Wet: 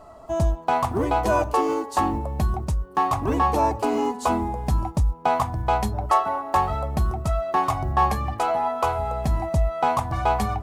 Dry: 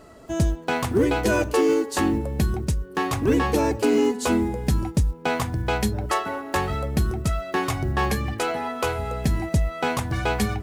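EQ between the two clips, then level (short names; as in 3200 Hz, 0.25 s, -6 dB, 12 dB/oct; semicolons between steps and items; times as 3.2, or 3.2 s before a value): low shelf 81 Hz +11 dB; band shelf 870 Hz +13 dB 1.2 oct; -6.0 dB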